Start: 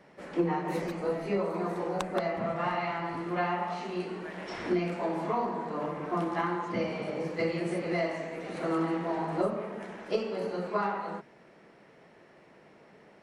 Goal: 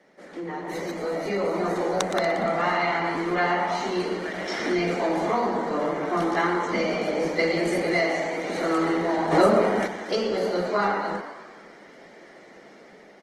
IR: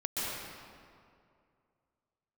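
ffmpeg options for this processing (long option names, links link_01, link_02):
-filter_complex "[0:a]highpass=frequency=190:width=0.5412,highpass=frequency=190:width=1.3066,acrossover=split=980[link_01][link_02];[link_01]alimiter=level_in=3.5dB:limit=-24dB:level=0:latency=1:release=15,volume=-3.5dB[link_03];[link_03][link_02]amix=inputs=2:normalize=0,equalizer=frequency=1000:width_type=o:width=0.33:gain=-5,equalizer=frequency=2000:width_type=o:width=0.33:gain=3,equalizer=frequency=4000:width_type=o:width=0.33:gain=4,equalizer=frequency=6300:width_type=o:width=0.33:gain=7,asplit=8[link_04][link_05][link_06][link_07][link_08][link_09][link_10][link_11];[link_05]adelay=118,afreqshift=90,volume=-12dB[link_12];[link_06]adelay=236,afreqshift=180,volume=-16.6dB[link_13];[link_07]adelay=354,afreqshift=270,volume=-21.2dB[link_14];[link_08]adelay=472,afreqshift=360,volume=-25.7dB[link_15];[link_09]adelay=590,afreqshift=450,volume=-30.3dB[link_16];[link_10]adelay=708,afreqshift=540,volume=-34.9dB[link_17];[link_11]adelay=826,afreqshift=630,volume=-39.5dB[link_18];[link_04][link_12][link_13][link_14][link_15][link_16][link_17][link_18]amix=inputs=8:normalize=0,asplit=2[link_19][link_20];[1:a]atrim=start_sample=2205,atrim=end_sample=3969,adelay=106[link_21];[link_20][link_21]afir=irnorm=-1:irlink=0,volume=-23dB[link_22];[link_19][link_22]amix=inputs=2:normalize=0,asplit=3[link_23][link_24][link_25];[link_23]afade=type=out:start_time=9.31:duration=0.02[link_26];[link_24]acontrast=75,afade=type=in:start_time=9.31:duration=0.02,afade=type=out:start_time=9.86:duration=0.02[link_27];[link_25]afade=type=in:start_time=9.86:duration=0.02[link_28];[link_26][link_27][link_28]amix=inputs=3:normalize=0,aresample=32000,aresample=44100,dynaudnorm=framelen=170:gausssize=13:maxgain=9dB,bandreject=frequency=2600:width=7.7" -ar 48000 -c:a libopus -b:a 20k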